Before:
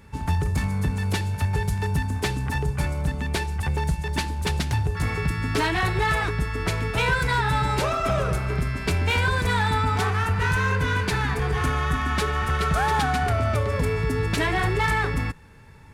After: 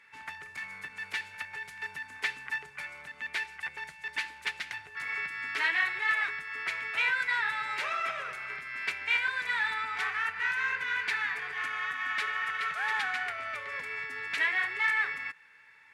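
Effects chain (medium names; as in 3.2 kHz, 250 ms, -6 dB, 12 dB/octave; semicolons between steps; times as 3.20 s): tilt EQ -4.5 dB/octave; compression 4:1, threshold -9 dBFS, peak gain reduction 7 dB; resonant high-pass 2 kHz, resonance Q 2.6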